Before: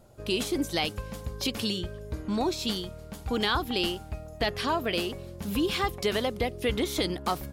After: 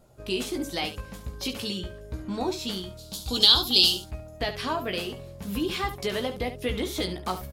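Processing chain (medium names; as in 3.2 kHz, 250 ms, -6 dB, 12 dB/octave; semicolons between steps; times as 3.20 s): 2.97–4.04 s: resonant high shelf 2.8 kHz +12 dB, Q 3; early reflections 16 ms -6 dB, 70 ms -11 dB; trim -2.5 dB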